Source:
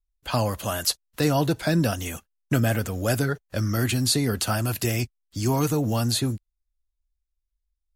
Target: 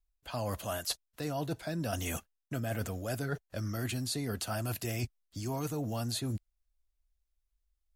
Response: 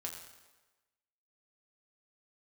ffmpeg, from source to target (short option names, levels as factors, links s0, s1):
-af "equalizer=f=670:w=5:g=5,areverse,acompressor=threshold=0.0251:ratio=10,areverse"